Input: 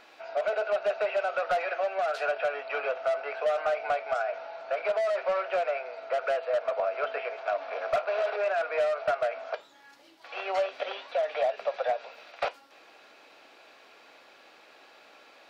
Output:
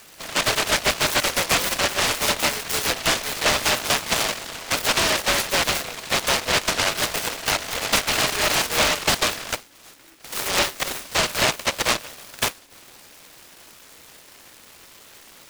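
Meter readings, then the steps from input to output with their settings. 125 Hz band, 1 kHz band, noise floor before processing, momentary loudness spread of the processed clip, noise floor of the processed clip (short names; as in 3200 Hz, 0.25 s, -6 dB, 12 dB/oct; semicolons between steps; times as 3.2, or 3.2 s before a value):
n/a, +5.5 dB, -56 dBFS, 7 LU, -49 dBFS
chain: resonant high shelf 3500 Hz -6.5 dB, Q 3; noise-modulated delay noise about 1700 Hz, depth 0.41 ms; gain +6 dB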